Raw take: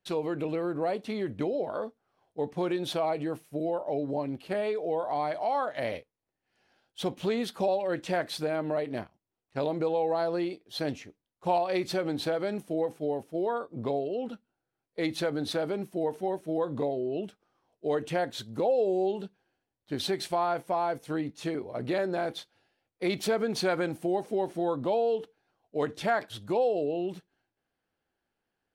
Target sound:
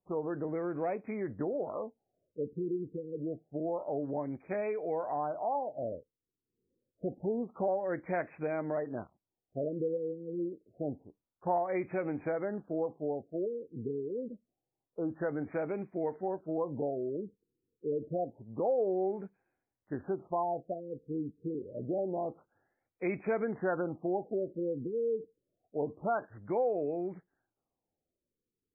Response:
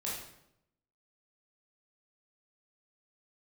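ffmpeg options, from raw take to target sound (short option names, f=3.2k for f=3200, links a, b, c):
-af "afftfilt=real='re*lt(b*sr/1024,490*pow(2600/490,0.5+0.5*sin(2*PI*0.27*pts/sr)))':imag='im*lt(b*sr/1024,490*pow(2600/490,0.5+0.5*sin(2*PI*0.27*pts/sr)))':win_size=1024:overlap=0.75,volume=-4dB"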